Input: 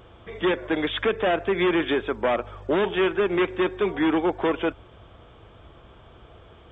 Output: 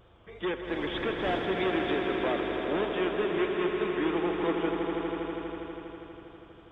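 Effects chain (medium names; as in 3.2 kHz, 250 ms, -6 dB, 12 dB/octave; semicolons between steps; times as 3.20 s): 0.63–1.50 s: wind noise 630 Hz -27 dBFS; vibrato 3.2 Hz 57 cents; echo with a slow build-up 81 ms, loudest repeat 5, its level -8.5 dB; trim -9 dB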